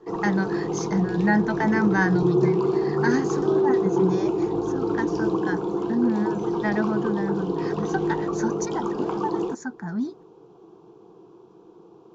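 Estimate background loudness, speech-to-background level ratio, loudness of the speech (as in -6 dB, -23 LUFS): -25.5 LUFS, -2.0 dB, -27.5 LUFS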